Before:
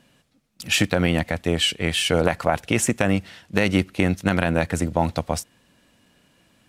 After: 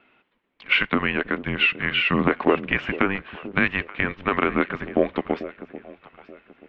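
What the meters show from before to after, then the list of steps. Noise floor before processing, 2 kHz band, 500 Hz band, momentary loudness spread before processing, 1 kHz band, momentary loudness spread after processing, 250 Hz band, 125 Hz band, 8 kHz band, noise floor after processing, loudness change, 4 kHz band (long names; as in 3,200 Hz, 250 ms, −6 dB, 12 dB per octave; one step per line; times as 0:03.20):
−62 dBFS, +4.0 dB, −1.5 dB, 6 LU, +0.5 dB, 10 LU, −2.5 dB, −8.5 dB, below −35 dB, −69 dBFS, −0.5 dB, −4.0 dB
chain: delay that swaps between a low-pass and a high-pass 440 ms, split 920 Hz, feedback 52%, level −12.5 dB
single-sideband voice off tune −290 Hz 520–3,300 Hz
level +3.5 dB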